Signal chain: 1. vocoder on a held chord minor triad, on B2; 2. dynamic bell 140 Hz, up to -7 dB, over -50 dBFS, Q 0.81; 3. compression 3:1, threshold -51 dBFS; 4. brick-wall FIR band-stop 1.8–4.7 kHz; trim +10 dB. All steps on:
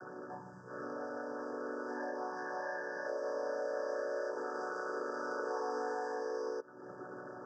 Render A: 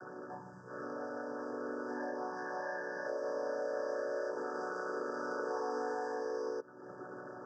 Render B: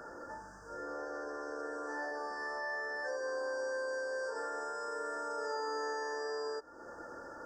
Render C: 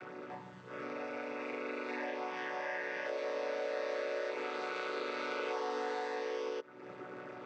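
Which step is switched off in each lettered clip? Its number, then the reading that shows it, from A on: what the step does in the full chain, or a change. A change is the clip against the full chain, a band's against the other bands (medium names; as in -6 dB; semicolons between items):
2, 250 Hz band +2.0 dB; 1, 4 kHz band +9.0 dB; 4, 4 kHz band +11.0 dB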